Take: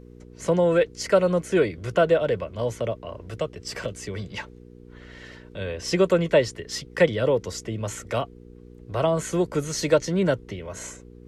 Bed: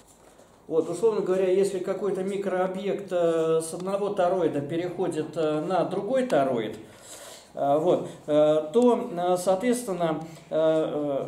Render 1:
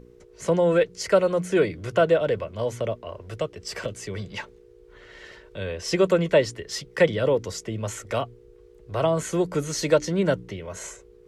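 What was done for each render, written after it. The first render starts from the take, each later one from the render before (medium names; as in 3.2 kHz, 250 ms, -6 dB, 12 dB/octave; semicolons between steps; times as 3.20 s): de-hum 60 Hz, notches 5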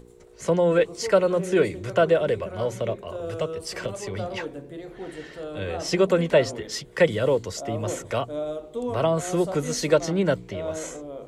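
add bed -10 dB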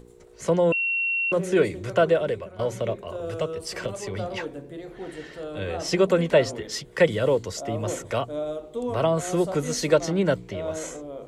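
0.72–1.32 s: bleep 2.73 kHz -22 dBFS; 1.91–2.59 s: fade out equal-power, to -11.5 dB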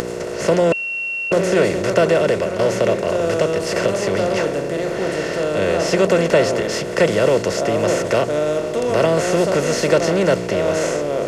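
spectral levelling over time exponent 0.4; upward compressor, threshold -23 dBFS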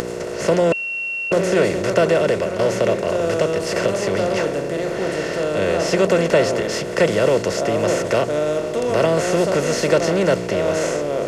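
trim -1 dB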